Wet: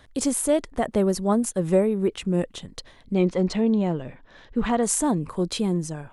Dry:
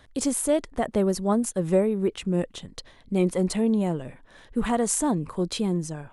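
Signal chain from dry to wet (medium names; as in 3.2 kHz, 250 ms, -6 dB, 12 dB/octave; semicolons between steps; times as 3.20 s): 3.14–4.83 s: low-pass 5.9 kHz 24 dB/octave; trim +1.5 dB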